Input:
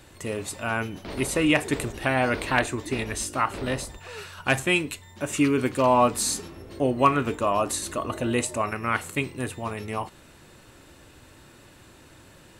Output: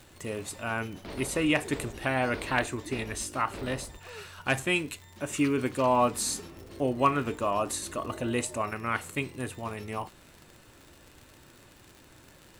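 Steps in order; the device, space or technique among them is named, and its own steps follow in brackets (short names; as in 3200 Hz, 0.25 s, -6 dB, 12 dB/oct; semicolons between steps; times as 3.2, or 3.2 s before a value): vinyl LP (crackle 95/s -35 dBFS; pink noise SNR 34 dB); gain -4.5 dB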